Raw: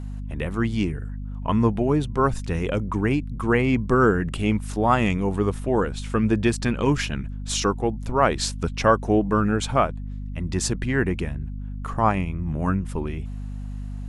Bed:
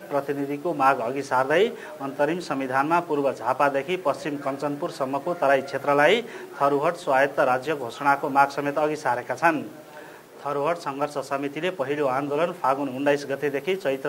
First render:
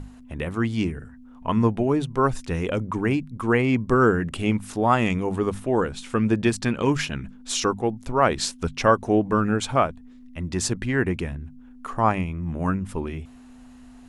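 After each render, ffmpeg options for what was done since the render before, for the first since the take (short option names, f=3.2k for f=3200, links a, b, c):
-af "bandreject=f=50:t=h:w=6,bandreject=f=100:t=h:w=6,bandreject=f=150:t=h:w=6,bandreject=f=200:t=h:w=6"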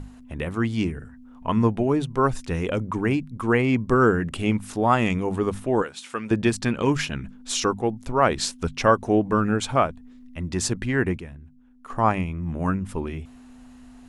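-filter_complex "[0:a]asettb=1/sr,asplit=3[a][b][c];[a]atrim=end=5.824[d];[b]atrim=start=5.82:end=6.31,asetpts=PTS-STARTPTS,afade=t=in:d=0.004:c=qsin,afade=t=out:st=0.486:d=0.004:c=qsin,highpass=f=850:p=1[e];[c]atrim=start=6.306[f];[d][e]acrossfade=d=0.004:c1=hsin:c2=qsin[g];[g][f]acrossfade=d=0.004:c1=qsin:c2=hsin,asplit=3[h][i][j];[h]atrim=end=11.182[k];[i]atrim=start=11.178:end=11.902,asetpts=PTS-STARTPTS,volume=-9dB[l];[j]atrim=start=11.898[m];[k][l]acrossfade=d=0.004:c1=hsin:c2=hsin[n];[n][m]acrossfade=d=0.004:c1=hsin:c2=hsin"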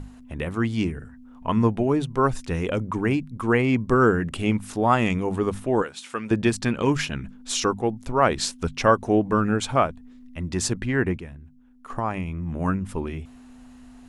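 -filter_complex "[0:a]asettb=1/sr,asplit=3[a][b][c];[a]atrim=end=10.804[d];[b]atrim=start=10.8:end=11.22,asetpts=PTS-STARTPTS,afade=t=in:d=0.004:c=qsin,afade=t=out:st=0.416:d=0.004:c=qsin,highshelf=f=5.5k:g=-6.5[e];[c]atrim=start=11.216[f];[d][e]acrossfade=d=0.004:c1=hsin:c2=qsin[g];[g][f]acrossfade=d=0.004:c1=qsin:c2=hsin,asettb=1/sr,asplit=3[h][i][j];[h]atrim=end=11.994[k];[i]atrim=start=11.99:end=12.52,asetpts=PTS-STARTPTS,afade=t=in:d=0.004:c=qsin,afade=t=out:st=0.526:d=0.004:c=qsin,acompressor=threshold=-26dB:ratio=2:attack=3.2:release=140:knee=1:detection=peak[l];[j]atrim=start=12.516[m];[k][l]acrossfade=d=0.004:c1=hsin:c2=qsin[n];[n][m]acrossfade=d=0.004:c1=qsin:c2=hsin"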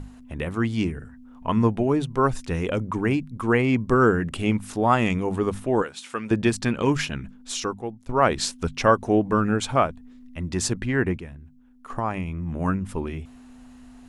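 -filter_complex "[0:a]asplit=2[a][b];[a]atrim=end=8.09,asetpts=PTS-STARTPTS,afade=t=out:st=7.04:d=1.05:silence=0.251189[c];[b]atrim=start=8.09,asetpts=PTS-STARTPTS,afade=t=in:d=0.004:c=hsin:silence=0.251189[d];[c][d]concat=n=2:v=0:a=1"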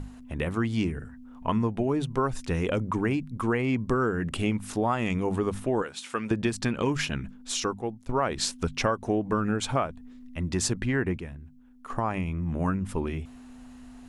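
-af "acompressor=threshold=-22dB:ratio=6"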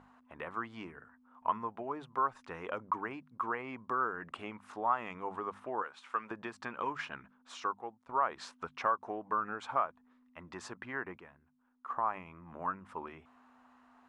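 -af "bandpass=f=1.1k:t=q:w=2.2:csg=0"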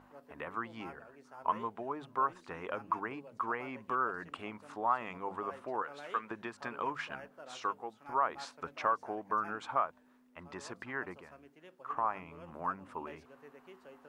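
-filter_complex "[1:a]volume=-30dB[a];[0:a][a]amix=inputs=2:normalize=0"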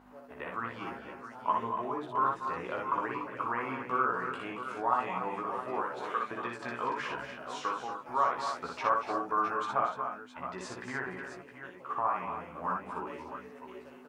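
-filter_complex "[0:a]asplit=2[a][b];[b]adelay=16,volume=-4.5dB[c];[a][c]amix=inputs=2:normalize=0,aecho=1:1:60|229|243|292|653|667:0.708|0.224|0.282|0.335|0.119|0.316"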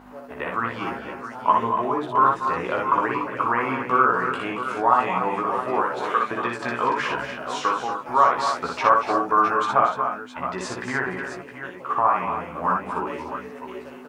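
-af "volume=11dB,alimiter=limit=-3dB:level=0:latency=1"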